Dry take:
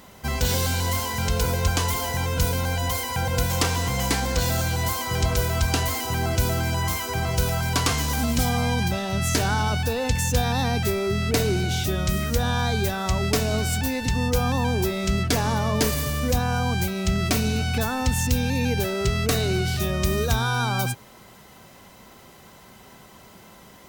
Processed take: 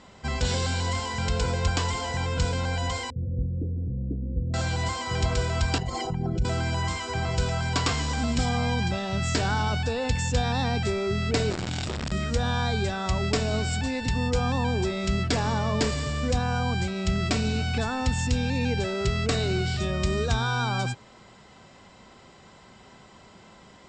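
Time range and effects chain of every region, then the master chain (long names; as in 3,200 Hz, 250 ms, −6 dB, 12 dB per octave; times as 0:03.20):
0:03.10–0:04.54: linear-phase brick-wall band-stop 670–11,000 Hz + phaser with its sweep stopped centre 2,200 Hz, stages 6
0:05.78–0:06.45: spectral envelope exaggerated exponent 2 + comb filter 5.5 ms, depth 100%
0:11.50–0:12.12: sign of each sample alone + saturating transformer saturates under 120 Hz
whole clip: Butterworth low-pass 8,000 Hz 96 dB per octave; notch filter 6,200 Hz, Q 7; level −2.5 dB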